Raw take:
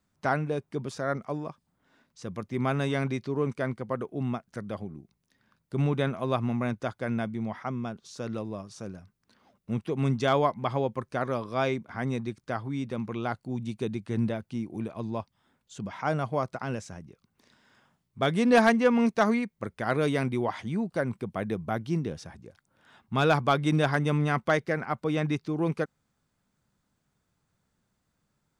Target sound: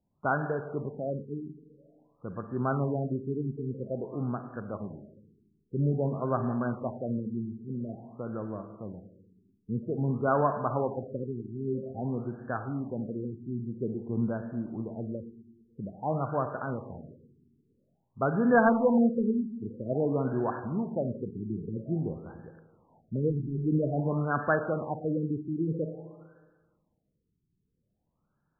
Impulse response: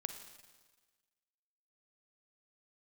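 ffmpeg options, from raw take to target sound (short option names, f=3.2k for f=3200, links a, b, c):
-filter_complex "[0:a]lowpass=f=2.9k:t=q:w=4.9[a];[1:a]atrim=start_sample=2205[b];[a][b]afir=irnorm=-1:irlink=0,afftfilt=real='re*lt(b*sr/1024,420*pow(1800/420,0.5+0.5*sin(2*PI*0.5*pts/sr)))':imag='im*lt(b*sr/1024,420*pow(1800/420,0.5+0.5*sin(2*PI*0.5*pts/sr)))':win_size=1024:overlap=0.75"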